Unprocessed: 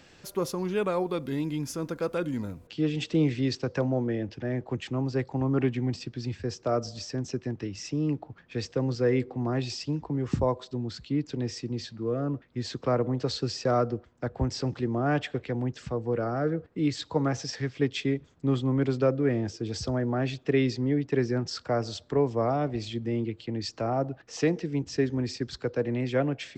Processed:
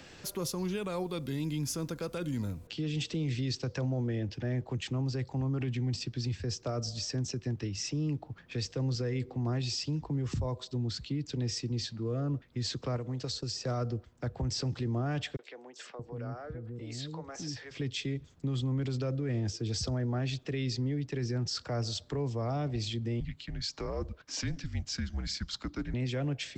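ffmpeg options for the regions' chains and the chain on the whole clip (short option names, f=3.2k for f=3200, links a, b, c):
-filter_complex "[0:a]asettb=1/sr,asplit=3[a][b][c];[a]atrim=end=12.964[d];[b]atrim=start=12.96:end=13.64,asetpts=PTS-STARTPTS,afade=t=in:d=0.004:c=qsin,afade=t=out:st=0.676:d=0.004:c=qsin,agate=range=-33dB:threshold=-38dB:ratio=3:release=100:detection=peak,acrossover=split=1500|4500[e][f][g];[e]acompressor=threshold=-32dB:ratio=4[h];[f]acompressor=threshold=-52dB:ratio=4[i];[g]acompressor=threshold=-40dB:ratio=4[j];[h][i][j]amix=inputs=3:normalize=0[k];[c]atrim=start=13.636[l];[d][k]acrossfade=d=0.004:c1=hsin:c2=qsin[m];[m][l]acrossfade=d=0.004:c1=qsin:c2=hsin,asettb=1/sr,asplit=3[n][o][p];[n]atrim=end=15.364[q];[o]atrim=start=15.36:end=17.71,asetpts=PTS-STARTPTS,afade=t=in:d=0.004:c=qsin,afade=t=out:st=2.346:d=0.004:c=qsin,acompressor=threshold=-43dB:ratio=2:attack=3.2:release=140:knee=1:detection=peak,acrossover=split=370|4500[r][s][t];[s]adelay=30[u];[r]adelay=630[v];[v][u][t]amix=inputs=3:normalize=0,atrim=end_sample=103635[w];[p]atrim=start=17.706[x];[q][w]acrossfade=d=0.004:c1=hsin:c2=qsin[y];[y][x]acrossfade=d=0.004:c1=qsin:c2=hsin,asettb=1/sr,asplit=3[z][aa][ab];[z]atrim=end=23.204[ac];[aa]atrim=start=23.2:end=25.94,asetpts=PTS-STARTPTS,afade=t=in:d=0.004:c=qsin,afade=t=out:st=2.736:d=0.004:c=qsin,highpass=f=610:p=1,afreqshift=-190,bandreject=f=2.6k:w=23[ad];[ab]atrim=start=25.936[ae];[ac][ad]acrossfade=d=0.004:c1=hsin:c2=qsin[af];[af][ae]acrossfade=d=0.004:c1=qsin:c2=hsin,acrossover=split=150|3000[ag][ah][ai];[ah]acompressor=threshold=-56dB:ratio=1.5[aj];[ag][aj][ai]amix=inputs=3:normalize=0,alimiter=level_in=5.5dB:limit=-24dB:level=0:latency=1:release=28,volume=-5.5dB,volume=4dB"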